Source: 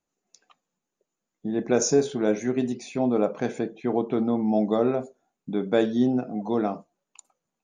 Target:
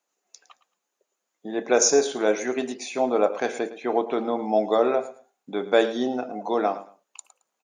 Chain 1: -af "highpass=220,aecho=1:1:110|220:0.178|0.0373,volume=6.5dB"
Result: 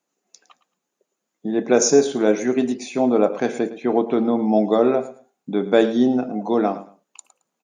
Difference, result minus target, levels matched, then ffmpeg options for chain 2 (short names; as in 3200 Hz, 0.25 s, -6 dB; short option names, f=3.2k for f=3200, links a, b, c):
250 Hz band +5.0 dB
-af "highpass=510,aecho=1:1:110|220:0.178|0.0373,volume=6.5dB"